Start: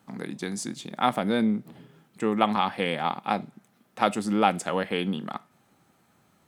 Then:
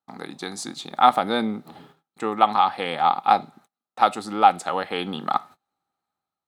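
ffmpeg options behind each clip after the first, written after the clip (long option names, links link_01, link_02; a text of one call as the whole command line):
ffmpeg -i in.wav -af "agate=range=-30dB:threshold=-52dB:ratio=16:detection=peak,equalizer=frequency=125:width_type=o:width=0.33:gain=-9,equalizer=frequency=200:width_type=o:width=0.33:gain=-7,equalizer=frequency=800:width_type=o:width=0.33:gain=11,equalizer=frequency=1250:width_type=o:width=0.33:gain=9,equalizer=frequency=4000:width_type=o:width=0.33:gain=10,dynaudnorm=framelen=160:gausssize=7:maxgain=9.5dB,volume=-1dB" out.wav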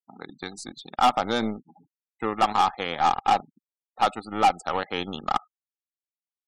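ffmpeg -i in.wav -af "volume=14dB,asoftclip=hard,volume=-14dB,aeval=exprs='0.211*(cos(1*acos(clip(val(0)/0.211,-1,1)))-cos(1*PI/2))+0.0188*(cos(3*acos(clip(val(0)/0.211,-1,1)))-cos(3*PI/2))+0.0119*(cos(4*acos(clip(val(0)/0.211,-1,1)))-cos(4*PI/2))+0.0106*(cos(7*acos(clip(val(0)/0.211,-1,1)))-cos(7*PI/2))':channel_layout=same,afftfilt=real='re*gte(hypot(re,im),0.00891)':imag='im*gte(hypot(re,im),0.00891)':win_size=1024:overlap=0.75" out.wav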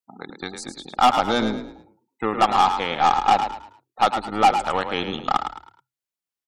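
ffmpeg -i in.wav -filter_complex "[0:a]asplit=5[link_01][link_02][link_03][link_04][link_05];[link_02]adelay=107,afreqshift=32,volume=-8dB[link_06];[link_03]adelay=214,afreqshift=64,volume=-17.9dB[link_07];[link_04]adelay=321,afreqshift=96,volume=-27.8dB[link_08];[link_05]adelay=428,afreqshift=128,volume=-37.7dB[link_09];[link_01][link_06][link_07][link_08][link_09]amix=inputs=5:normalize=0,volume=3.5dB" out.wav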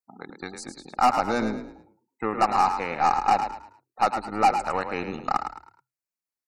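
ffmpeg -i in.wav -af "asuperstop=centerf=3300:order=4:qfactor=2.6,volume=-3.5dB" out.wav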